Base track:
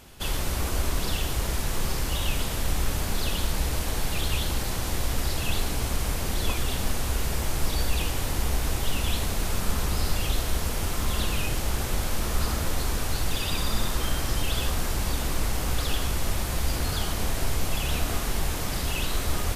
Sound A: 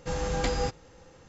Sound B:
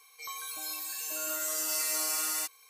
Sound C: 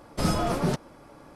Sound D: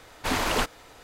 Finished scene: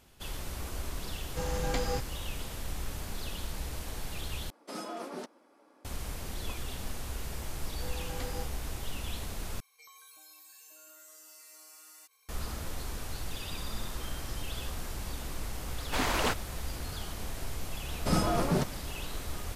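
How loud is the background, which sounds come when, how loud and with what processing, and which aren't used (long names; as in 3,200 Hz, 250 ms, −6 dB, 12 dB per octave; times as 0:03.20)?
base track −11 dB
0:01.30: mix in A −4 dB
0:04.50: overwrite with C −12 dB + Butterworth high-pass 230 Hz
0:07.76: mix in A −12.5 dB
0:09.60: overwrite with B −9 dB + downward compressor, threshold −42 dBFS
0:15.68: mix in D −4 dB
0:17.88: mix in C −2.5 dB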